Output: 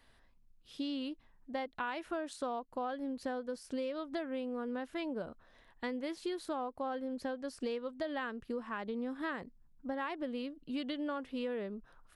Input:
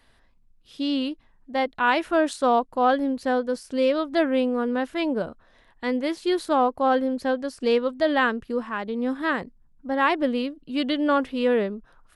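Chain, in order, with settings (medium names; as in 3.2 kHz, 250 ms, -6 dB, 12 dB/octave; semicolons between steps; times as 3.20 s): compression 10:1, threshold -29 dBFS, peak gain reduction 14.5 dB; trim -5.5 dB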